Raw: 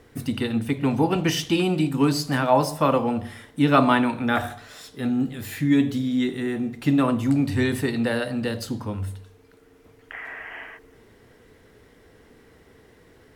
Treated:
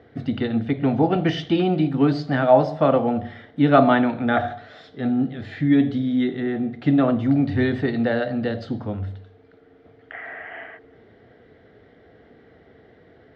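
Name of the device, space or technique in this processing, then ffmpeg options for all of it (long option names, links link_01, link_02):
guitar cabinet: -af "highpass=76,equalizer=frequency=690:width_type=q:width=4:gain=8,equalizer=frequency=1000:width_type=q:width=4:gain=-10,equalizer=frequency=2600:width_type=q:width=4:gain=-9,lowpass=frequency=3500:width=0.5412,lowpass=frequency=3500:width=1.3066,volume=2dB"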